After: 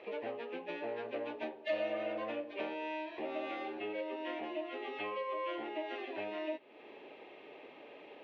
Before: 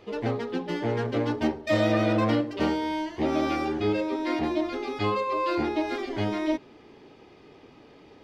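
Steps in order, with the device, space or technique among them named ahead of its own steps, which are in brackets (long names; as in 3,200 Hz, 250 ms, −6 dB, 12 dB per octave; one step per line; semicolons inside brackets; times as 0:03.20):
hearing aid with frequency lowering (hearing-aid frequency compression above 1,600 Hz 1.5 to 1; downward compressor 3 to 1, threshold −40 dBFS, peak gain reduction 15.5 dB; loudspeaker in its box 400–6,200 Hz, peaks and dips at 590 Hz +7 dB, 1,300 Hz −5 dB, 2,600 Hz +8 dB, 4,200 Hz +4 dB)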